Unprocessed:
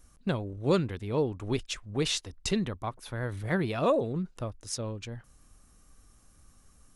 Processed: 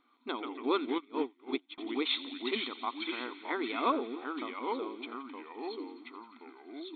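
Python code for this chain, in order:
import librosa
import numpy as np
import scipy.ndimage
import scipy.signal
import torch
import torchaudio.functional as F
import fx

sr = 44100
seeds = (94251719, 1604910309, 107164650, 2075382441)

y = fx.echo_pitch(x, sr, ms=81, semitones=-3, count=3, db_per_echo=-6.0)
y = fx.brickwall_bandpass(y, sr, low_hz=240.0, high_hz=4300.0)
y = y + 0.75 * np.pad(y, (int(0.9 * sr / 1000.0), 0))[:len(y)]
y = fx.echo_wet_highpass(y, sr, ms=86, feedback_pct=84, hz=2300.0, wet_db=-15.5)
y = fx.upward_expand(y, sr, threshold_db=-43.0, expansion=2.5, at=(0.98, 1.78))
y = F.gain(torch.from_numpy(y), -2.0).numpy()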